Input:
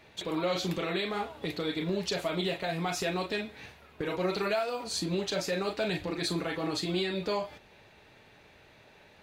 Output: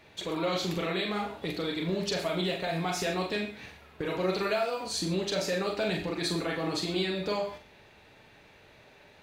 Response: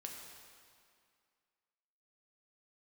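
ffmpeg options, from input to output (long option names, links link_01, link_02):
-filter_complex "[0:a]asplit=2[link_01][link_02];[1:a]atrim=start_sample=2205,afade=type=out:start_time=0.15:duration=0.01,atrim=end_sample=7056,adelay=43[link_03];[link_02][link_03]afir=irnorm=-1:irlink=0,volume=-1dB[link_04];[link_01][link_04]amix=inputs=2:normalize=0"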